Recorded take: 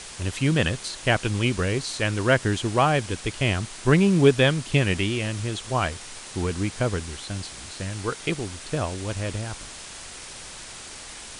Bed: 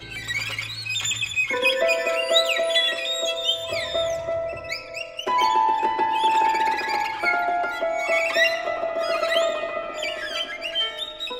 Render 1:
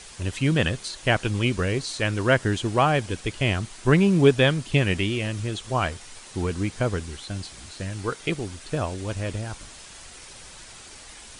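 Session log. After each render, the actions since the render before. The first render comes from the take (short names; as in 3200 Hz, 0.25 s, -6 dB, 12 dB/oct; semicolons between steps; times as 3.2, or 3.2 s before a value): denoiser 6 dB, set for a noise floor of -40 dBFS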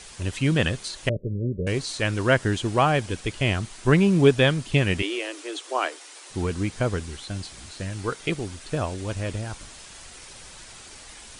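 1.09–1.67 rippled Chebyshev low-pass 600 Hz, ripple 6 dB; 5.02–6.3 steep high-pass 280 Hz 96 dB/oct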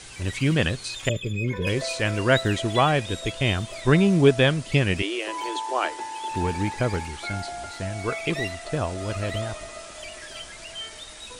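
add bed -12 dB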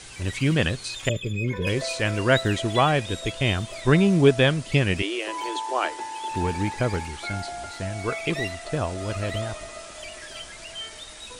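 nothing audible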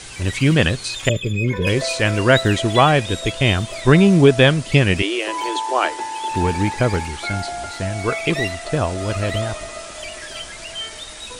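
gain +6.5 dB; limiter -1 dBFS, peak gain reduction 2.5 dB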